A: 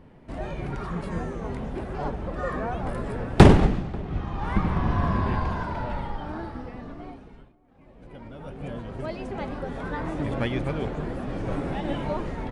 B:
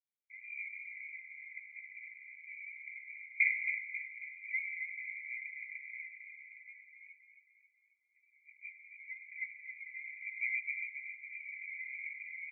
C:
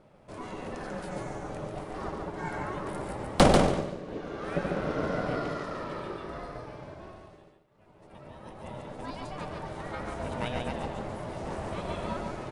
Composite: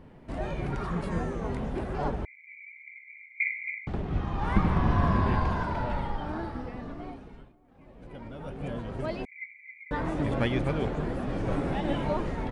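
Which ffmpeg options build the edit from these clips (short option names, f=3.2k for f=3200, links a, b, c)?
-filter_complex "[1:a]asplit=2[a][b];[0:a]asplit=3[c][d][e];[c]atrim=end=2.252[f];[a]atrim=start=2.248:end=3.872[g];[d]atrim=start=3.868:end=9.252[h];[b]atrim=start=9.248:end=9.912[i];[e]atrim=start=9.908[j];[f][g]acrossfade=d=0.004:c1=hsin:c2=hsin[k];[k][h]acrossfade=d=0.004:c1=hsin:c2=hsin[l];[l][i]acrossfade=d=0.004:c1=hsin:c2=hsin[m];[m][j]acrossfade=d=0.004:c1=hsin:c2=hsin"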